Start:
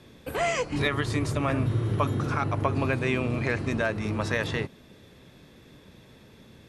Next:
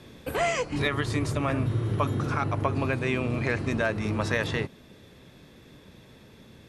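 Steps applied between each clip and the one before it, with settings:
speech leveller within 5 dB 0.5 s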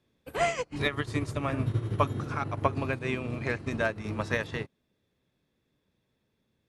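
expander for the loud parts 2.5 to 1, over −40 dBFS
level +2.5 dB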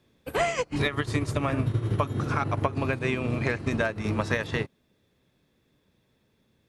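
downward compressor 10 to 1, threshold −29 dBFS, peak gain reduction 11 dB
level +7.5 dB

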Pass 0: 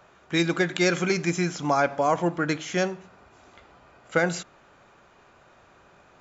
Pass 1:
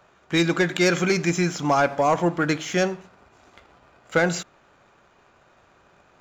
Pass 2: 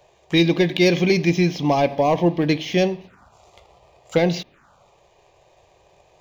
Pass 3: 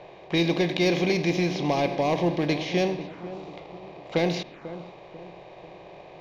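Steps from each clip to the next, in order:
leveller curve on the samples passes 1
phaser swept by the level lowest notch 220 Hz, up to 1,400 Hz, full sweep at −27 dBFS; level +5 dB
compressor on every frequency bin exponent 0.6; feedback echo with a low-pass in the loop 493 ms, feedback 45%, low-pass 1,100 Hz, level −13 dB; low-pass that shuts in the quiet parts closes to 2,600 Hz, open at −11 dBFS; level −8.5 dB

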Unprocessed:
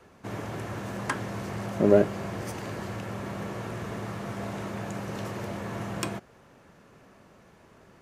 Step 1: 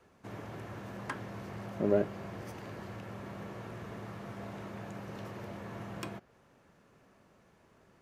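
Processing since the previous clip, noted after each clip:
dynamic equaliser 8,300 Hz, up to −7 dB, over −58 dBFS, Q 0.91
level −8.5 dB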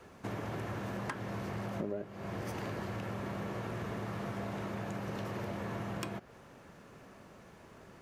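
downward compressor 8 to 1, threshold −44 dBFS, peak gain reduction 22 dB
level +9 dB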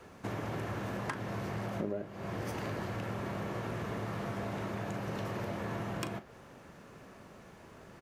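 double-tracking delay 38 ms −13 dB
level +1.5 dB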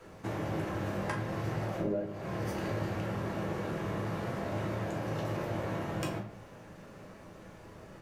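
rectangular room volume 41 cubic metres, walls mixed, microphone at 0.67 metres
level −2 dB

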